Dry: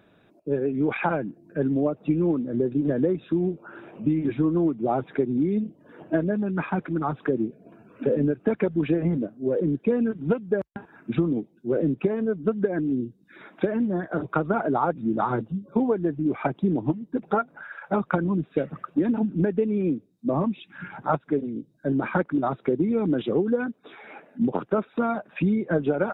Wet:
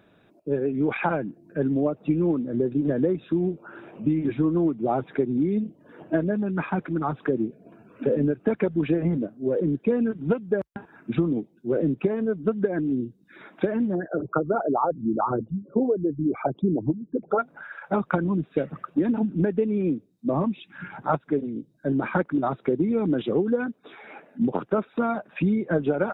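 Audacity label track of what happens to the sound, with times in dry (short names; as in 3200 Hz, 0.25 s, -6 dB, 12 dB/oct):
13.950000	17.390000	formant sharpening exponent 2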